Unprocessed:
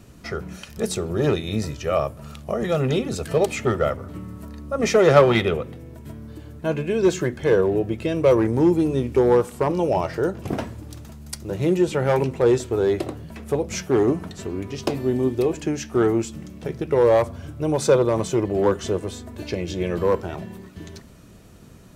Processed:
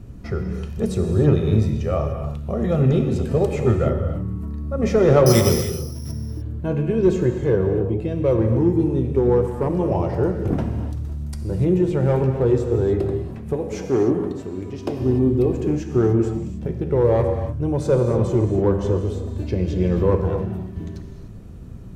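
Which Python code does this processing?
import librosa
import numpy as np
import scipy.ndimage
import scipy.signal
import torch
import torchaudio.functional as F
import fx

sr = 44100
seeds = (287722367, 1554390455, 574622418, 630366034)

y = fx.high_shelf(x, sr, hz=7900.0, db=7.5)
y = fx.resample_bad(y, sr, factor=8, down='none', up='zero_stuff', at=(5.26, 6.12))
y = fx.tilt_eq(y, sr, slope=-3.5)
y = fx.notch(y, sr, hz=620.0, q=20.0)
y = fx.rev_gated(y, sr, seeds[0], gate_ms=320, shape='flat', drr_db=4.5)
y = fx.rider(y, sr, range_db=3, speed_s=2.0)
y = fx.highpass(y, sr, hz=260.0, slope=6, at=(13.53, 15.0))
y = F.gain(torch.from_numpy(y), -5.5).numpy()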